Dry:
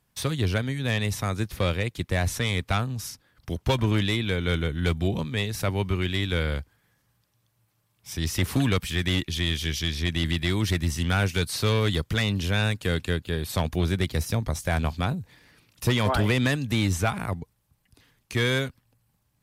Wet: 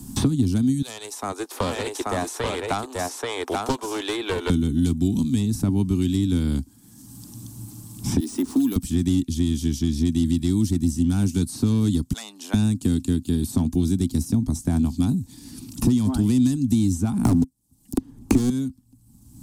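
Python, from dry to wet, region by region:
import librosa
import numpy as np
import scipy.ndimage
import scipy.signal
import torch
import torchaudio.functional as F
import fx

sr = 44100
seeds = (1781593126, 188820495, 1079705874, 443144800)

y = fx.chain(x, sr, fx.steep_highpass(hz=440.0, slope=48),
    fx.echo_single(ms=833, db=-4.0),
    fx.doppler_dist(depth_ms=0.22), at=(0.82, 4.5))
y = fx.chain(y, sr, fx.highpass(hz=330.0, slope=24),
    fx.high_shelf(hz=4100.0, db=-7.0),
    fx.resample_bad(factor=3, down='none', up='hold'), at=(8.2, 8.76))
y = fx.chain(y, sr, fx.cheby1_highpass(hz=640.0, order=3),
    fx.upward_expand(threshold_db=-41.0, expansion=1.5), at=(12.13, 12.54))
y = fx.chain(y, sr, fx.peak_eq(hz=520.0, db=9.0, octaves=2.1),
    fx.leveller(passes=5),
    fx.band_squash(depth_pct=70), at=(17.25, 18.5))
y = fx.curve_eq(y, sr, hz=(160.0, 260.0, 520.0, 840.0, 2000.0, 8000.0, 14000.0), db=(0, 14, -19, -9, -23, 4, -4))
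y = fx.band_squash(y, sr, depth_pct=100)
y = F.gain(torch.from_numpy(y), 1.5).numpy()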